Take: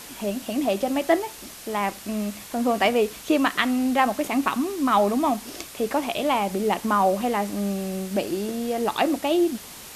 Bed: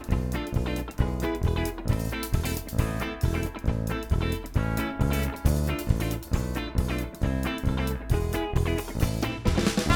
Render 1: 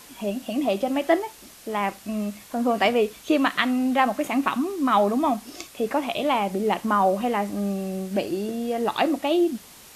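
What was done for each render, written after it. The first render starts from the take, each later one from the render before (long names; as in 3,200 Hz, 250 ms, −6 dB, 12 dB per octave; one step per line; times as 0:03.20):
noise reduction from a noise print 6 dB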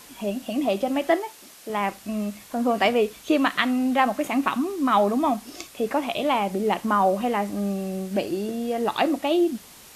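0:01.10–0:01.70: high-pass filter 280 Hz 6 dB per octave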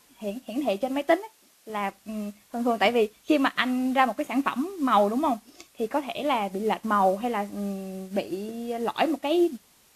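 expander for the loud parts 1.5 to 1, over −41 dBFS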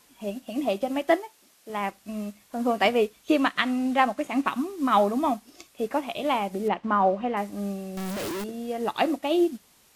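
0:03.40–0:04.48: low-pass filter 11,000 Hz
0:06.68–0:07.37: low-pass filter 3,000 Hz
0:07.97–0:08.44: sign of each sample alone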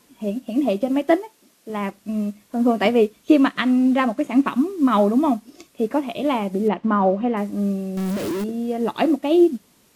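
parametric band 230 Hz +9.5 dB 2.4 octaves
notch filter 790 Hz, Q 14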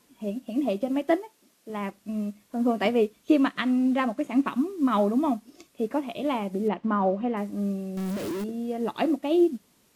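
level −6 dB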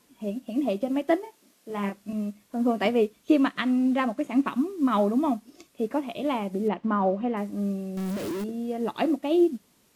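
0:01.20–0:02.13: double-tracking delay 30 ms −3 dB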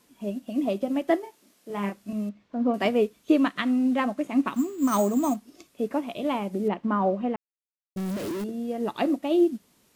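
0:02.29–0:02.74: high-frequency loss of the air 200 metres
0:04.54–0:05.36: sample-rate reduction 7,400 Hz
0:07.36–0:07.96: silence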